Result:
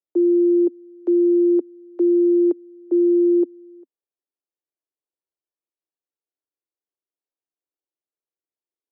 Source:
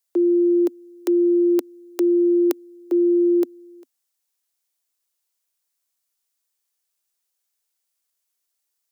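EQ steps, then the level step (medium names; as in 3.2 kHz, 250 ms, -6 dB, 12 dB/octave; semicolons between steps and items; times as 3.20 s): ladder band-pass 380 Hz, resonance 45%; +7.0 dB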